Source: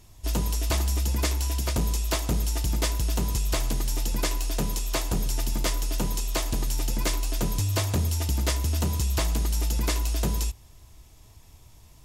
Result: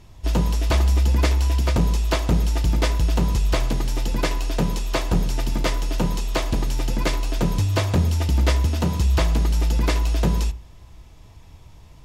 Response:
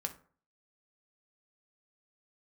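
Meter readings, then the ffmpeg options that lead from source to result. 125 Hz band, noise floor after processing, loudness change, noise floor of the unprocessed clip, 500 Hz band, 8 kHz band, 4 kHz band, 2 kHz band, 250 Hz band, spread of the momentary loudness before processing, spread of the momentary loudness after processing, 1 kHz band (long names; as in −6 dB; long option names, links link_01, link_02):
+6.5 dB, −46 dBFS, +5.0 dB, −52 dBFS, +6.5 dB, −4.0 dB, +2.0 dB, +5.5 dB, +7.0 dB, 3 LU, 5 LU, +6.0 dB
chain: -filter_complex "[0:a]lowpass=frequency=3800:poles=1,asplit=2[link_01][link_02];[1:a]atrim=start_sample=2205,lowpass=5900[link_03];[link_02][link_03]afir=irnorm=-1:irlink=0,volume=-3.5dB[link_04];[link_01][link_04]amix=inputs=2:normalize=0,volume=2.5dB"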